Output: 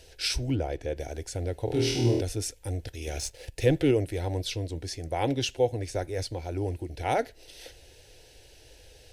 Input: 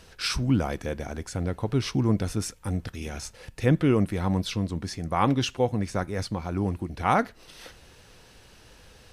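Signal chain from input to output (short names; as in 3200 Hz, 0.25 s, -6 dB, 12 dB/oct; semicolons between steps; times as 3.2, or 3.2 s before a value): 0.54–0.96 LPF 1700 Hz -> 3100 Hz 6 dB/oct; 3.07–3.91 sample leveller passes 1; fixed phaser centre 480 Hz, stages 4; 1.65–2.21 flutter echo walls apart 4.3 m, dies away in 0.85 s; gain +1 dB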